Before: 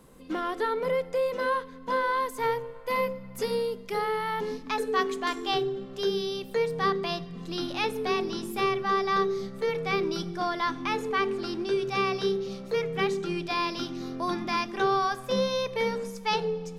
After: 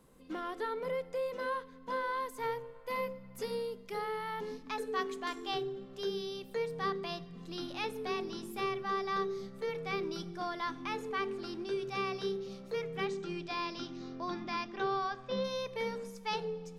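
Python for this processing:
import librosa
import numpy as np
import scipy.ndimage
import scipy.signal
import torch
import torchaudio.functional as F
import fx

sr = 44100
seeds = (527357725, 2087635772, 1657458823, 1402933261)

y = fx.lowpass(x, sr, hz=fx.line((13.05, 8800.0), (15.43, 4600.0)), slope=24, at=(13.05, 15.43), fade=0.02)
y = F.gain(torch.from_numpy(y), -8.5).numpy()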